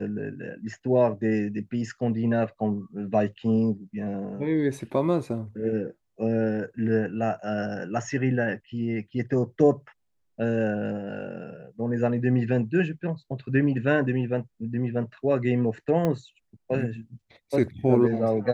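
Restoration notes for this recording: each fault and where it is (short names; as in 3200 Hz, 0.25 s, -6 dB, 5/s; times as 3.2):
16.05 pop -14 dBFS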